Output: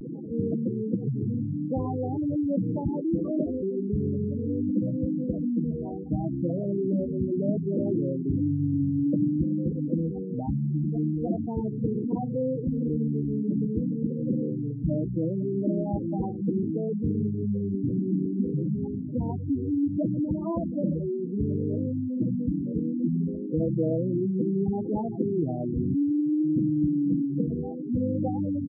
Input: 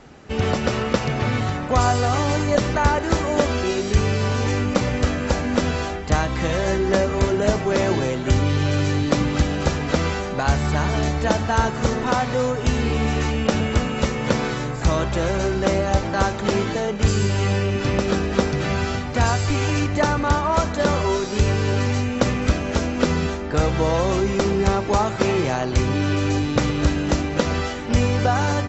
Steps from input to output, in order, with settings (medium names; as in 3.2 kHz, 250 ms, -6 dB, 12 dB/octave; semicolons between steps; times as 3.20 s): one-bit delta coder 16 kbps, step -26 dBFS; band-pass filter 240 Hz, Q 1.5; saturation -17 dBFS, distortion -18 dB; comb 6.3 ms, depth 32%; reverse; upward compressor, threshold -32 dBFS; reverse; feedback delay 115 ms, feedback 45%, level -22 dB; spectral gate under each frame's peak -10 dB strong; vibrato 0.65 Hz 74 cents; trim +1.5 dB